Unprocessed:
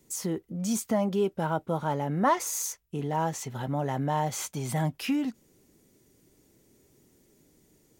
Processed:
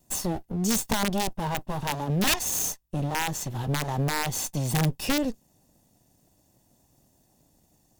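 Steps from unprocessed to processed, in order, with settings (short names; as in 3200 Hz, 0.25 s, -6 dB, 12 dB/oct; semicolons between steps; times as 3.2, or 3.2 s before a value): minimum comb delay 1.1 ms; bell 2000 Hz -6.5 dB 1.2 oct; sample leveller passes 1; wrapped overs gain 20 dB; dynamic EQ 1200 Hz, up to -4 dB, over -43 dBFS, Q 0.71; gain +3 dB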